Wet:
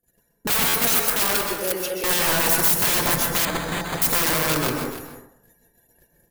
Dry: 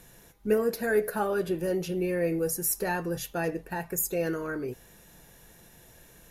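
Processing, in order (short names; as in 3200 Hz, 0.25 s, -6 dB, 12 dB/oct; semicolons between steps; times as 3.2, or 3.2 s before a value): bin magnitudes rounded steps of 30 dB; 0.85–2.04 HPF 640 Hz 12 dB/oct; wrapped overs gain 28.5 dB; echo 0.293 s -13.5 dB; gate -51 dBFS, range -37 dB; high shelf 10000 Hz +10 dB; plate-style reverb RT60 0.7 s, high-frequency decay 0.4×, pre-delay 0.115 s, DRR 2.5 dB; 3.45–4.02 careless resampling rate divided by 8×, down filtered, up hold; stuck buffer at 0.68, samples 512, times 4; gain +9 dB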